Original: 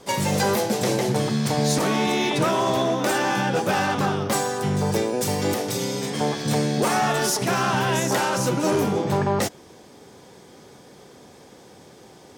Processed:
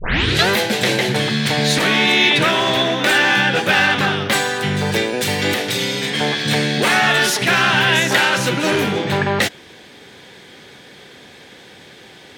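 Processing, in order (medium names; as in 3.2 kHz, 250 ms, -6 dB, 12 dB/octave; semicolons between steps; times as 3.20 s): tape start-up on the opening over 0.49 s; high-order bell 2.5 kHz +12 dB; trim +2.5 dB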